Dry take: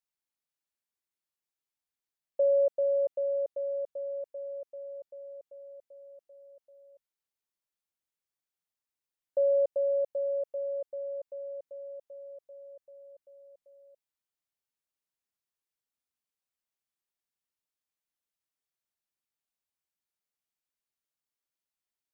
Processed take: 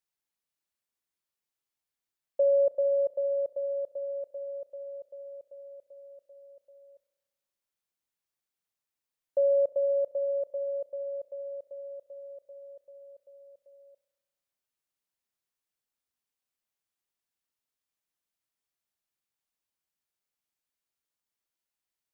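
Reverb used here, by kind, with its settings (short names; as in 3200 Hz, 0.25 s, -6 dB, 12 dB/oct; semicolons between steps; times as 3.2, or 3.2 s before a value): spring tank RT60 1.3 s, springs 33 ms, DRR 16.5 dB; gain +1.5 dB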